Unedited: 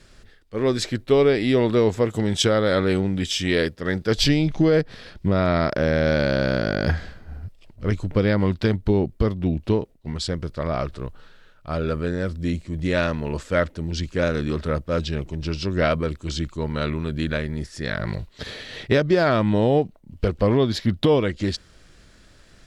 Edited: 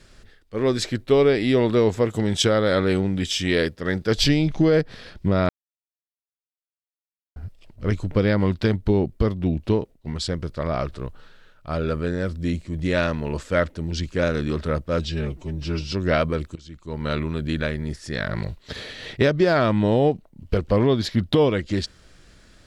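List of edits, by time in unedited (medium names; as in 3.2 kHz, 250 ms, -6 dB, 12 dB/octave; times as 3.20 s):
5.49–7.36 s: mute
15.04–15.63 s: stretch 1.5×
16.26–16.77 s: fade in quadratic, from -19 dB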